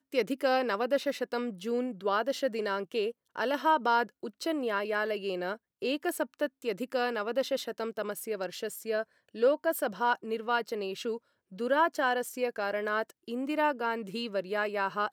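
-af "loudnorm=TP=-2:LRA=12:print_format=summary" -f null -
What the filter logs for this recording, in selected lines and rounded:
Input Integrated:    -31.5 LUFS
Input True Peak:     -14.1 dBTP
Input LRA:             2.5 LU
Input Threshold:     -41.5 LUFS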